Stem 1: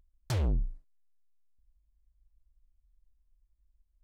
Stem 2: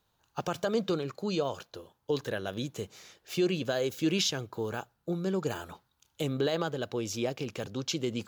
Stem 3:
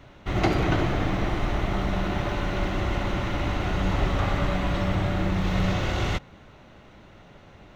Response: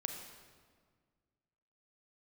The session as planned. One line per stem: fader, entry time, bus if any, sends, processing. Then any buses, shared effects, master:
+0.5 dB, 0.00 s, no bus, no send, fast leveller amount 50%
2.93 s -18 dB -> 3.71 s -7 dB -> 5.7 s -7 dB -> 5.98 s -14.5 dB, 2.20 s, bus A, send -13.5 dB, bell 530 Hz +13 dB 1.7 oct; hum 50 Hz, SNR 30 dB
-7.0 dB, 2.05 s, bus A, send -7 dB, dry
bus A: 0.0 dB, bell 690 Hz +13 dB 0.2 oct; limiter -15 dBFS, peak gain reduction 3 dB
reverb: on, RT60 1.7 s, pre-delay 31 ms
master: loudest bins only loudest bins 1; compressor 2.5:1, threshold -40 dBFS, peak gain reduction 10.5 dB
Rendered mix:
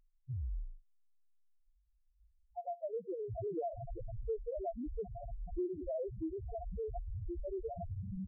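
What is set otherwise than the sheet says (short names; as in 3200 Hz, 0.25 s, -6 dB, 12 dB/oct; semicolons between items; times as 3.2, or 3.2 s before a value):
stem 1: missing fast leveller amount 50%; stem 2 -18.0 dB -> -11.0 dB; stem 3: entry 2.05 s -> 2.95 s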